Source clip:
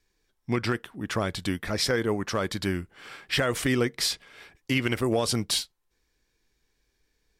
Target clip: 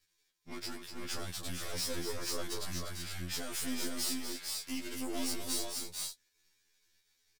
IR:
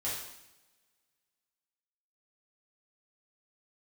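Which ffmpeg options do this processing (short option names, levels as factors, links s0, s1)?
-filter_complex "[0:a]aeval=exprs='if(lt(val(0),0),0.251*val(0),val(0))':c=same,tiltshelf=f=1400:g=-8,acrossover=split=850|4500[s0][s1][s2];[s1]acompressor=threshold=0.00631:ratio=6[s3];[s0][s3][s2]amix=inputs=3:normalize=0,asoftclip=type=tanh:threshold=0.0299,aecho=1:1:243|448|482:0.422|0.501|0.596,afftfilt=real='re*2*eq(mod(b,4),0)':imag='im*2*eq(mod(b,4),0)':win_size=2048:overlap=0.75"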